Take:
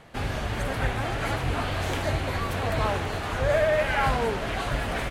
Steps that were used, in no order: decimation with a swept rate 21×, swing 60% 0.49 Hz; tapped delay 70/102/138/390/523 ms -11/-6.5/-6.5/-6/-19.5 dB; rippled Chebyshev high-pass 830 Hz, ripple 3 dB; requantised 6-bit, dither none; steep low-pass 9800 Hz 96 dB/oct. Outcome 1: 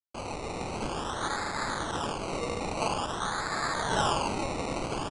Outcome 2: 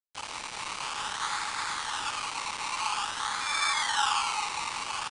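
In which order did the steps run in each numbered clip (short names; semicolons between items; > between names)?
tapped delay > requantised > rippled Chebyshev high-pass > decimation with a swept rate > steep low-pass; tapped delay > decimation with a swept rate > rippled Chebyshev high-pass > requantised > steep low-pass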